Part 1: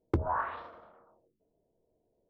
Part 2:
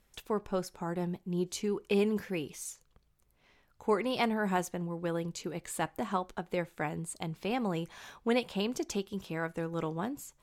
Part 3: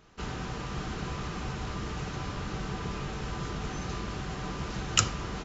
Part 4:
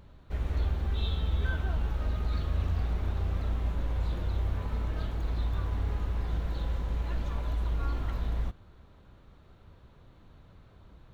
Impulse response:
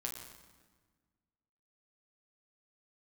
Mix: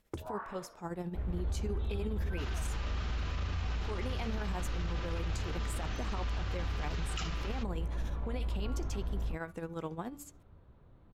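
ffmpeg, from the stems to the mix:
-filter_complex "[0:a]acompressor=threshold=-32dB:ratio=2.5,volume=-7dB[link_01];[1:a]bandreject=frequency=289.5:width_type=h:width=4,bandreject=frequency=579:width_type=h:width=4,bandreject=frequency=868.5:width_type=h:width=4,bandreject=frequency=1158:width_type=h:width=4,bandreject=frequency=1447.5:width_type=h:width=4,bandreject=frequency=1737:width_type=h:width=4,bandreject=frequency=2026.5:width_type=h:width=4,bandreject=frequency=2316:width_type=h:width=4,bandreject=frequency=2605.5:width_type=h:width=4,bandreject=frequency=2895:width_type=h:width=4,bandreject=frequency=3184.5:width_type=h:width=4,bandreject=frequency=3474:width_type=h:width=4,bandreject=frequency=3763.5:width_type=h:width=4,bandreject=frequency=4053:width_type=h:width=4,bandreject=frequency=4342.5:width_type=h:width=4,bandreject=frequency=4632:width_type=h:width=4,bandreject=frequency=4921.5:width_type=h:width=4,bandreject=frequency=5211:width_type=h:width=4,bandreject=frequency=5500.5:width_type=h:width=4,bandreject=frequency=5790:width_type=h:width=4,bandreject=frequency=6079.5:width_type=h:width=4,bandreject=frequency=6369:width_type=h:width=4,bandreject=frequency=6658.5:width_type=h:width=4,alimiter=level_in=0.5dB:limit=-24dB:level=0:latency=1:release=29,volume=-0.5dB,tremolo=f=14:d=0.65,volume=-1.5dB[link_02];[2:a]bandpass=frequency=3700:width_type=q:width=0.71:csg=0,aemphasis=mode=reproduction:type=50fm,adelay=2200,volume=2dB[link_03];[3:a]lowpass=frequency=1100:poles=1,adelay=850,volume=-3.5dB[link_04];[link_01][link_02][link_03][link_04]amix=inputs=4:normalize=0,alimiter=level_in=3.5dB:limit=-24dB:level=0:latency=1:release=17,volume=-3.5dB"

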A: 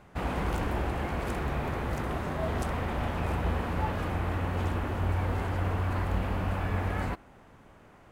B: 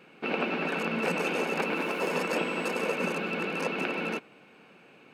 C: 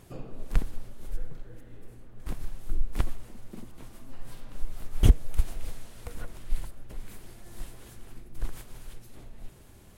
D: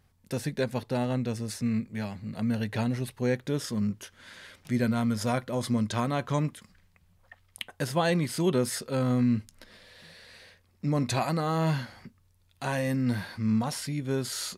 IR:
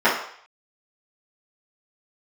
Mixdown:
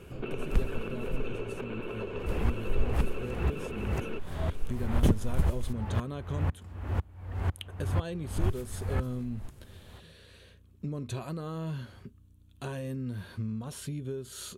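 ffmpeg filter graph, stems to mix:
-filter_complex "[0:a]acompressor=threshold=-30dB:ratio=6,aeval=exprs='val(0)*pow(10,-34*if(lt(mod(-2*n/s,1),2*abs(-2)/1000),1-mod(-2*n/s,1)/(2*abs(-2)/1000),(mod(-2*n/s,1)-2*abs(-2)/1000)/(1-2*abs(-2)/1000))/20)':channel_layout=same,adelay=2000,volume=2dB[link_01];[1:a]lowpass=3600,volume=0.5dB[link_02];[2:a]volume=-4dB,asplit=3[link_03][link_04][link_05];[link_03]atrim=end=5.73,asetpts=PTS-STARTPTS,afade=type=out:start_time=5.726:duration=0.004:curve=hsin[link_06];[link_04]atrim=start=5.73:end=8.37,asetpts=PTS-STARTPTS,volume=0[link_07];[link_05]atrim=start=8.37,asetpts=PTS-STARTPTS,afade=type=in:duration=0.004:curve=hsin[link_08];[link_06][link_07][link_08]concat=n=3:v=0:a=1[link_09];[3:a]acontrast=70,volume=-10dB[link_10];[link_02][link_10]amix=inputs=2:normalize=0,equalizer=frequency=400:width_type=o:width=0.33:gain=10,equalizer=frequency=800:width_type=o:width=0.33:gain=-8,equalizer=frequency=2000:width_type=o:width=0.33:gain=-10,equalizer=frequency=3150:width_type=o:width=0.33:gain=4,equalizer=frequency=5000:width_type=o:width=0.33:gain=-11,acompressor=threshold=-36dB:ratio=6,volume=0dB[link_11];[link_01][link_09][link_11]amix=inputs=3:normalize=0,equalizer=frequency=75:width_type=o:width=1.6:gain=10.5,aeval=exprs='val(0)+0.001*(sin(2*PI*60*n/s)+sin(2*PI*2*60*n/s)/2+sin(2*PI*3*60*n/s)/3+sin(2*PI*4*60*n/s)/4+sin(2*PI*5*60*n/s)/5)':channel_layout=same,aeval=exprs='0.188*(abs(mod(val(0)/0.188+3,4)-2)-1)':channel_layout=same"

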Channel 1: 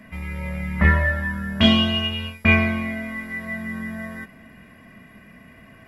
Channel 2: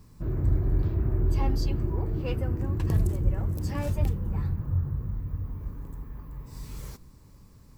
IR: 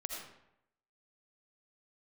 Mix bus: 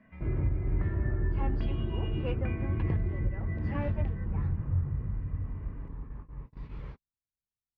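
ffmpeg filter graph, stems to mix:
-filter_complex "[0:a]lowpass=2000,acompressor=threshold=-24dB:ratio=6,volume=-14dB[link_01];[1:a]lowpass=frequency=2800:width=0.5412,lowpass=frequency=2800:width=1.3066,agate=range=-50dB:threshold=-39dB:ratio=16:detection=peak,volume=-1.5dB[link_02];[link_01][link_02]amix=inputs=2:normalize=0,alimiter=limit=-20dB:level=0:latency=1:release=401"

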